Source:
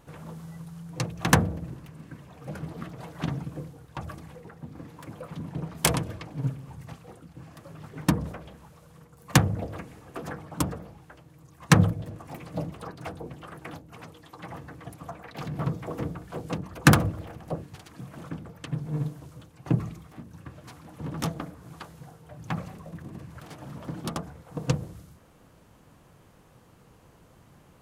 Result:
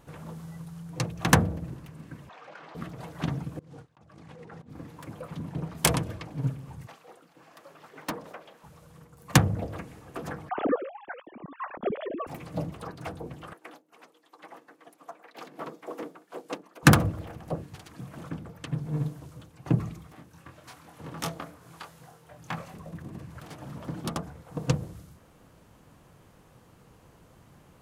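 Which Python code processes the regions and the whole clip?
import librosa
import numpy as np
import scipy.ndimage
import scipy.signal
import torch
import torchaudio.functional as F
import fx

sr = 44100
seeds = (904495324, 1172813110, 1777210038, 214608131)

y = fx.chain(x, sr, fx.highpass(hz=880.0, slope=12),
    fx.air_absorb(metres=170.0),
    fx.env_flatten(amount_pct=70), at=(2.29, 2.75))
y = fx.chain(y, sr, fx.gate_hold(open_db=-38.0, close_db=-46.0, hold_ms=71.0, range_db=-21, attack_ms=1.4, release_ms=100.0),
    fx.over_compress(threshold_db=-49.0, ratio=-1.0),
    fx.bandpass_edges(low_hz=110.0, high_hz=6600.0), at=(3.59, 4.7))
y = fx.chain(y, sr, fx.highpass(hz=450.0, slope=12),
    fx.peak_eq(hz=9600.0, db=-4.5, octaves=1.1),
    fx.clip_hard(threshold_db=-25.5), at=(6.87, 8.64))
y = fx.chain(y, sr, fx.sine_speech(),
    fx.over_compress(threshold_db=-28.0, ratio=-0.5), at=(10.49, 12.27))
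y = fx.chain(y, sr, fx.highpass(hz=280.0, slope=24),
    fx.upward_expand(threshold_db=-56.0, expansion=1.5), at=(13.53, 16.83))
y = fx.chain(y, sr, fx.low_shelf(hz=350.0, db=-11.0),
    fx.doubler(ms=24.0, db=-5), at=(20.15, 22.74))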